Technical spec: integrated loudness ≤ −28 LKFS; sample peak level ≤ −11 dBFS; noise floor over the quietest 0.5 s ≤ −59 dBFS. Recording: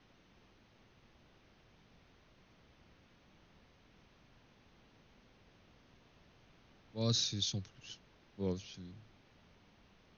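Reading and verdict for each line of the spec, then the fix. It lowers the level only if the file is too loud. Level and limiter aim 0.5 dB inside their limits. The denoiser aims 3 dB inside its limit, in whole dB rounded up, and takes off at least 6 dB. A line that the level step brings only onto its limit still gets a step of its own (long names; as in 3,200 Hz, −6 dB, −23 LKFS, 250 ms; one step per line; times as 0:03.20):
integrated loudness −38.0 LKFS: in spec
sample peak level −19.5 dBFS: in spec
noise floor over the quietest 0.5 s −66 dBFS: in spec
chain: no processing needed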